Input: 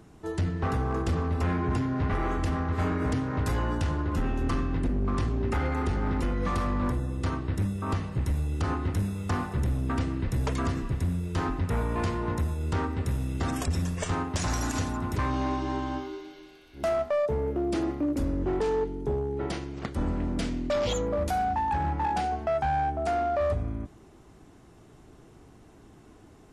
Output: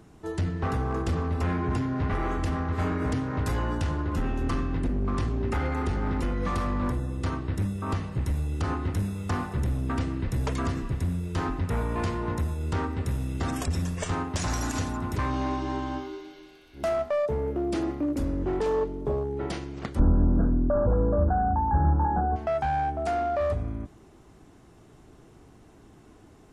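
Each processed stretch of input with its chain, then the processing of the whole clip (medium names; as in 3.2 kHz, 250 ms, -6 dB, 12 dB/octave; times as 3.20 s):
18.66–19.24 s: median filter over 15 samples + small resonant body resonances 600/1100 Hz, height 13 dB
19.99–22.36 s: brick-wall FIR low-pass 1.7 kHz + tilt EQ -2.5 dB/octave
whole clip: none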